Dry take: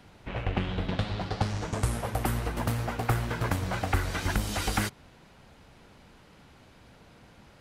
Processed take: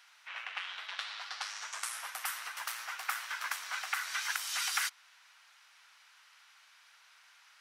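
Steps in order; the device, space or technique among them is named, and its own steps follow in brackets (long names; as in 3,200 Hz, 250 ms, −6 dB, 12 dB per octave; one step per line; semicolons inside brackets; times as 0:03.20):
headphones lying on a table (high-pass filter 1,200 Hz 24 dB per octave; parametric band 5,700 Hz +5 dB 0.26 octaves)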